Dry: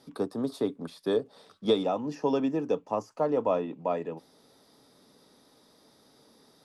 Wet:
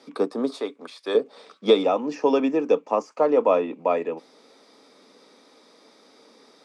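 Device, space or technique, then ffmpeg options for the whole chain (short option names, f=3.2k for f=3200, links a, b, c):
television speaker: -filter_complex "[0:a]asettb=1/sr,asplit=3[a][b][c];[a]atrim=end=0.604[d];[b]atrim=start=0.6:end=1.15,asetpts=PTS-STARTPTS,afade=t=in:d=0.004:c=qsin,afade=t=out:st=0.546:d=0.004:c=qsin,highpass=f=850:p=1[e];[c]atrim=start=1.146[f];[d][e]acrossfade=d=0.004:c1=hsin:c2=qsin[g];[g][f]acrossfade=d=0.004:c1=qsin:c2=hsin,highpass=f=220:w=0.5412,highpass=f=220:w=1.3066,equalizer=f=490:t=q:w=4:g=4,equalizer=f=1.2k:t=q:w=4:g=4,equalizer=f=2.3k:t=q:w=4:g=9,lowpass=f=8.6k:w=0.5412,lowpass=f=8.6k:w=1.3066,volume=5.5dB"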